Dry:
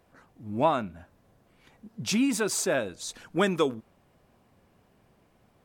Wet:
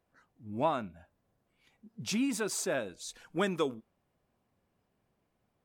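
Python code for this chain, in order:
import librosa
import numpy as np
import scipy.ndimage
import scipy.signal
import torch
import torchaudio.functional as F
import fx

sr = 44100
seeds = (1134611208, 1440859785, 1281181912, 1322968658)

y = fx.noise_reduce_blind(x, sr, reduce_db=8)
y = y * 10.0 ** (-6.0 / 20.0)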